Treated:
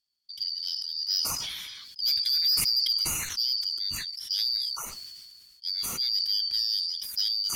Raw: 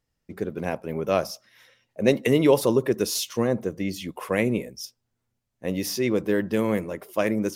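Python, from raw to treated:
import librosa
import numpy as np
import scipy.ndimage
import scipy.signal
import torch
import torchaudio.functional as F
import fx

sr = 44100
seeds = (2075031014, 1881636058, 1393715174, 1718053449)

y = fx.band_shuffle(x, sr, order='4321')
y = fx.tone_stack(y, sr, knobs='6-0-2')
y = fx.fold_sine(y, sr, drive_db=7, ceiling_db=-20.0)
y = fx.sustainer(y, sr, db_per_s=29.0)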